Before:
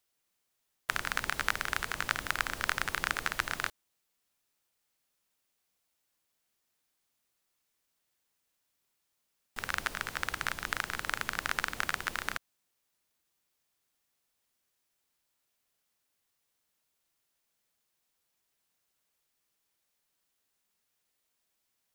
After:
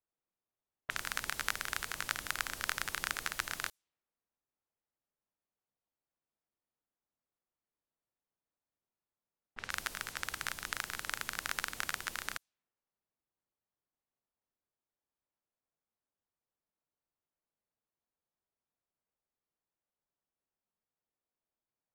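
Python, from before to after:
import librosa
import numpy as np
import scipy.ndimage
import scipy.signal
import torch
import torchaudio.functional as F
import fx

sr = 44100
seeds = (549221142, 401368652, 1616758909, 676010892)

y = fx.env_lowpass(x, sr, base_hz=1000.0, full_db=-33.5)
y = fx.high_shelf(y, sr, hz=3700.0, db=9.5)
y = y * 10.0 ** (-7.0 / 20.0)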